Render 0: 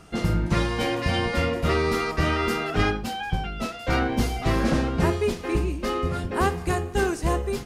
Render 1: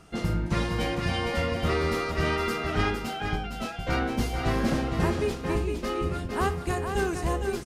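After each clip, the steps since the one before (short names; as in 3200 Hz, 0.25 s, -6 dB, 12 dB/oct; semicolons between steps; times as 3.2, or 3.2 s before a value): echo 0.46 s -6.5 dB; gain -4 dB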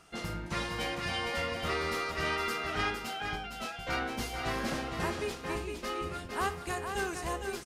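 low shelf 480 Hz -11.5 dB; gain -1.5 dB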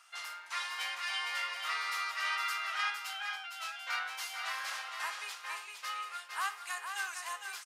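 HPF 1000 Hz 24 dB/oct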